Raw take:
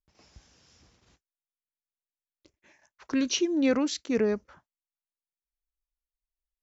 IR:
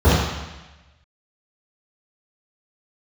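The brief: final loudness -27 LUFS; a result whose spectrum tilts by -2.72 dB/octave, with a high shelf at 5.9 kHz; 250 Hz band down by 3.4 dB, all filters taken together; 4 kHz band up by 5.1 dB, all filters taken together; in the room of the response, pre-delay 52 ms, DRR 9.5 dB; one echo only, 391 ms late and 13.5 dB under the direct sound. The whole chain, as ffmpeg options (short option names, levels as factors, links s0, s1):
-filter_complex "[0:a]equalizer=f=250:t=o:g=-4,equalizer=f=4000:t=o:g=5.5,highshelf=f=5900:g=3.5,aecho=1:1:391:0.211,asplit=2[s0][s1];[1:a]atrim=start_sample=2205,adelay=52[s2];[s1][s2]afir=irnorm=-1:irlink=0,volume=0.0188[s3];[s0][s3]amix=inputs=2:normalize=0"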